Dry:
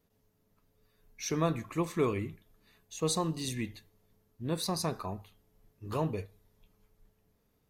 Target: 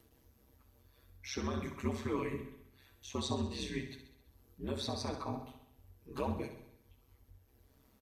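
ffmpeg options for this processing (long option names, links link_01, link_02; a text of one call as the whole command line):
ffmpeg -i in.wav -filter_complex "[0:a]aecho=1:1:5.4:0.79,bandreject=frequency=99.69:width_type=h:width=4,bandreject=frequency=199.38:width_type=h:width=4,bandreject=frequency=299.07:width_type=h:width=4,acrossover=split=420|970|5900[link_01][link_02][link_03][link_04];[link_04]acompressor=threshold=-59dB:ratio=6[link_05];[link_01][link_02][link_03][link_05]amix=inputs=4:normalize=0,alimiter=limit=-23dB:level=0:latency=1:release=75,acompressor=mode=upward:threshold=-54dB:ratio=2.5,flanger=delay=2.4:depth=8.7:regen=46:speed=0.69:shape=sinusoidal,aeval=exprs='val(0)*sin(2*PI*69*n/s)':channel_layout=same,aecho=1:1:63|126|189|252|315|378|441:0.335|0.191|0.109|0.062|0.0354|0.0202|0.0115,asetrate=42336,aresample=44100,volume=3dB" out.wav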